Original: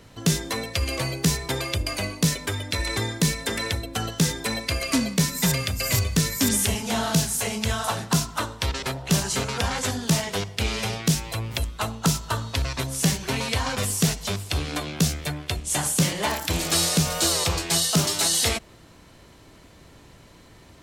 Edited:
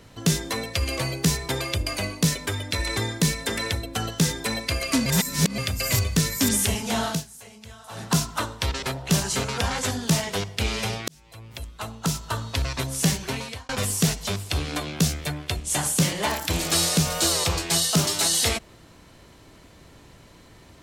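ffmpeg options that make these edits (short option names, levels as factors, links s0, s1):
-filter_complex "[0:a]asplit=7[s0][s1][s2][s3][s4][s5][s6];[s0]atrim=end=5.062[s7];[s1]atrim=start=5.058:end=5.582,asetpts=PTS-STARTPTS,areverse[s8];[s2]atrim=start=5.578:end=7.24,asetpts=PTS-STARTPTS,afade=t=out:st=1.472:d=0.19:silence=0.11885[s9];[s3]atrim=start=7.24:end=7.89,asetpts=PTS-STARTPTS,volume=0.119[s10];[s4]atrim=start=7.89:end=11.08,asetpts=PTS-STARTPTS,afade=t=in:d=0.19:silence=0.11885,afade=t=out:st=3.186:d=0.004:c=hsin[s11];[s5]atrim=start=11.08:end=13.69,asetpts=PTS-STARTPTS,afade=t=in:d=1.55,afade=t=out:st=2.1:d=0.51[s12];[s6]atrim=start=13.69,asetpts=PTS-STARTPTS,afade=t=in:d=0.004:c=hsin[s13];[s7][s8]acrossfade=d=0.004:c1=hsin:c2=hsin[s14];[s9][s10][s11][s12][s13]concat=n=5:v=0:a=1[s15];[s14][s15]acrossfade=d=0.004:c1=hsin:c2=hsin"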